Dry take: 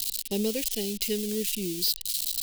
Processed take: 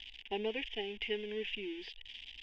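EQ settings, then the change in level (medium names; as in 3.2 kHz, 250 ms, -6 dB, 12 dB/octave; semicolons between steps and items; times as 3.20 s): elliptic low-pass 3.5 kHz, stop band 70 dB; resonant low shelf 480 Hz -8.5 dB, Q 1.5; static phaser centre 840 Hz, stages 8; +3.5 dB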